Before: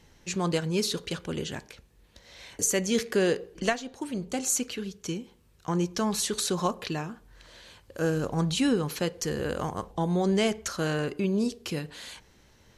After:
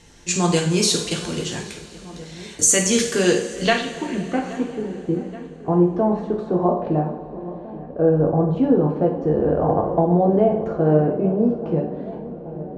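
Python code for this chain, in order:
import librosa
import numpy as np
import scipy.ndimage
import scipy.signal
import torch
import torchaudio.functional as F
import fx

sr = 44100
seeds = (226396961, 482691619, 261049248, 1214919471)

p1 = fx.filter_sweep_lowpass(x, sr, from_hz=8500.0, to_hz=660.0, start_s=3.13, end_s=4.9, q=2.3)
p2 = fx.level_steps(p1, sr, step_db=15)
p3 = p1 + (p2 * 10.0 ** (2.0 / 20.0))
p4 = fx.echo_filtered(p3, sr, ms=826, feedback_pct=82, hz=1500.0, wet_db=-17)
p5 = fx.rev_double_slope(p4, sr, seeds[0], early_s=0.51, late_s=4.0, knee_db=-18, drr_db=-0.5)
y = fx.band_squash(p5, sr, depth_pct=70, at=(9.69, 10.64))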